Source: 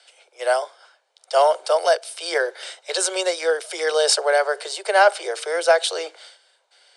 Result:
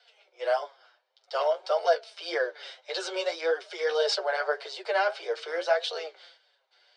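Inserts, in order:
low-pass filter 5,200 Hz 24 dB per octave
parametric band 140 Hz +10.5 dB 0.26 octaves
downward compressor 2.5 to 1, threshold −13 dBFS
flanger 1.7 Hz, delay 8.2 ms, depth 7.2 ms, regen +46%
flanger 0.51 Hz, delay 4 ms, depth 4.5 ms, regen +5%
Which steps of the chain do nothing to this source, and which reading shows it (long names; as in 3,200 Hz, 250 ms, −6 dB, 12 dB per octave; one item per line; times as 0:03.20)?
parametric band 140 Hz: nothing at its input below 300 Hz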